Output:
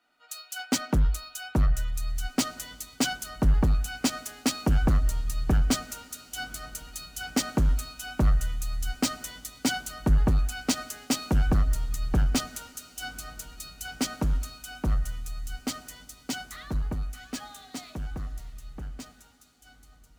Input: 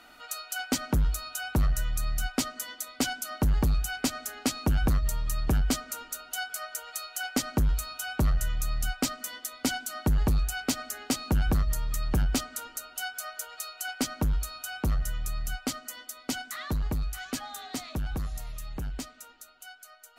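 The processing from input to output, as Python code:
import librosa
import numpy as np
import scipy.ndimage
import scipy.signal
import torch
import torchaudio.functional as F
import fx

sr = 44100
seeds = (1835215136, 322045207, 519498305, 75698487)

y = scipy.ndimage.median_filter(x, 3, mode='constant')
y = fx.echo_diffused(y, sr, ms=1935, feedback_pct=50, wet_db=-15)
y = fx.band_widen(y, sr, depth_pct=70)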